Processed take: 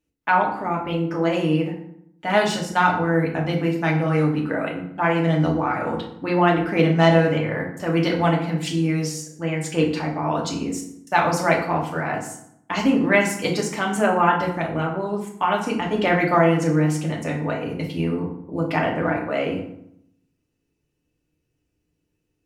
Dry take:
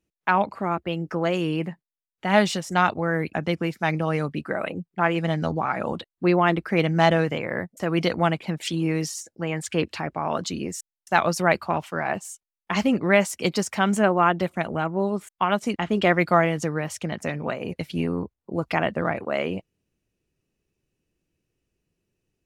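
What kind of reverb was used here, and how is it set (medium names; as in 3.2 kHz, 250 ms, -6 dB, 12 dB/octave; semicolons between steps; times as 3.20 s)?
FDN reverb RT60 0.72 s, low-frequency decay 1.35×, high-frequency decay 0.65×, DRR -1.5 dB; trim -2 dB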